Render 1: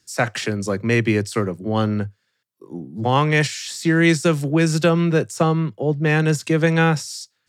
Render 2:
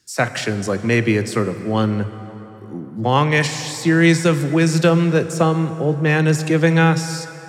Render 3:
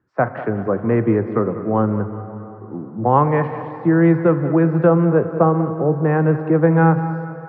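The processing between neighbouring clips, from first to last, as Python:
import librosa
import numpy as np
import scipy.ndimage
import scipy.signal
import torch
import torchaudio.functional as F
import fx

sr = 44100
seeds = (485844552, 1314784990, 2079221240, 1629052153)

y1 = fx.rev_plate(x, sr, seeds[0], rt60_s=3.9, hf_ratio=0.6, predelay_ms=0, drr_db=11.0)
y1 = y1 * librosa.db_to_amplitude(1.5)
y2 = scipy.signal.sosfilt(scipy.signal.butter(4, 1200.0, 'lowpass', fs=sr, output='sos'), y1)
y2 = fx.tilt_eq(y2, sr, slope=1.5)
y2 = fx.echo_feedback(y2, sr, ms=196, feedback_pct=44, wet_db=-14.0)
y2 = y2 * librosa.db_to_amplitude(3.5)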